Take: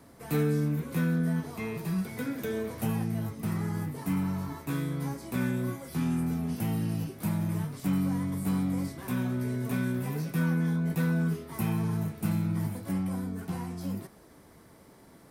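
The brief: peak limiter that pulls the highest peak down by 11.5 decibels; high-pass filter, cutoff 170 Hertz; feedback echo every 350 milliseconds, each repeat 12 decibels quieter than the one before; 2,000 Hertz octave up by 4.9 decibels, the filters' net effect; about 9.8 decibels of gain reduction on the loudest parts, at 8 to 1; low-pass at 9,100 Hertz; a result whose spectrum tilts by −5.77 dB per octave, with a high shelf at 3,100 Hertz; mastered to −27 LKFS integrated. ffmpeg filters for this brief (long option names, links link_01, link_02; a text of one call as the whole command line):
ffmpeg -i in.wav -af "highpass=170,lowpass=9100,equalizer=frequency=2000:width_type=o:gain=5.5,highshelf=frequency=3100:gain=4,acompressor=threshold=-36dB:ratio=8,alimiter=level_in=12.5dB:limit=-24dB:level=0:latency=1,volume=-12.5dB,aecho=1:1:350|700|1050:0.251|0.0628|0.0157,volume=17.5dB" out.wav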